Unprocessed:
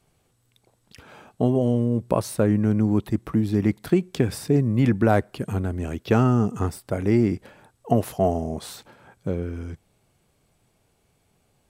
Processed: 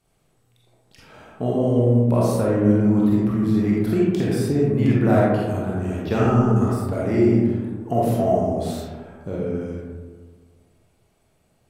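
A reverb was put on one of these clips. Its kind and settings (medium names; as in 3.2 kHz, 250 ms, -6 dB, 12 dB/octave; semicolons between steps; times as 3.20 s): algorithmic reverb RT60 1.6 s, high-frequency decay 0.35×, pre-delay 5 ms, DRR -6 dB; trim -5 dB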